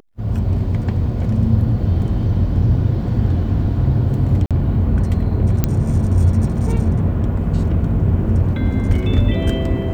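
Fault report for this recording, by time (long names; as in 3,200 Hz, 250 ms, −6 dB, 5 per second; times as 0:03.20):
0:04.46–0:04.51: drop-out 47 ms
0:05.64: click −3 dBFS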